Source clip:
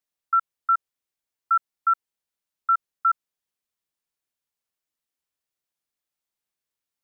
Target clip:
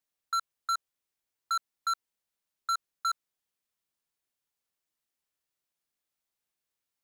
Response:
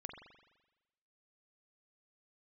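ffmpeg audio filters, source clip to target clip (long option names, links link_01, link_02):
-af "asoftclip=type=hard:threshold=-26.5dB"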